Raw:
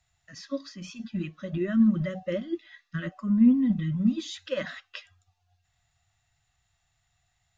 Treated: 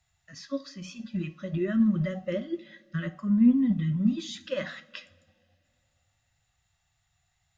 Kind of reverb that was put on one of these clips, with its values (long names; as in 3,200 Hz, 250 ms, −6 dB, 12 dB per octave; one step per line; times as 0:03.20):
coupled-rooms reverb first 0.35 s, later 2.6 s, from −21 dB, DRR 10 dB
level −1 dB